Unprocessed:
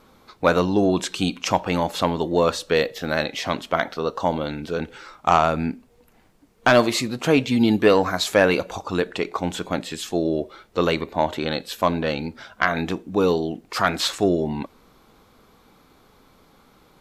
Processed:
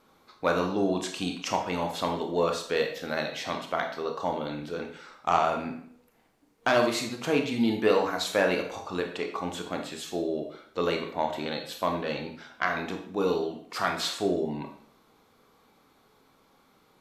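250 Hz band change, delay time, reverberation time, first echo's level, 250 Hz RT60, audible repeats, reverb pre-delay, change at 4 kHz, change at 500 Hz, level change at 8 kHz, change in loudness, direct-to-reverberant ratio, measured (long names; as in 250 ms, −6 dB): −8.0 dB, no echo audible, 0.60 s, no echo audible, 0.60 s, no echo audible, 22 ms, −6.5 dB, −6.5 dB, −6.5 dB, −7.0 dB, 3.0 dB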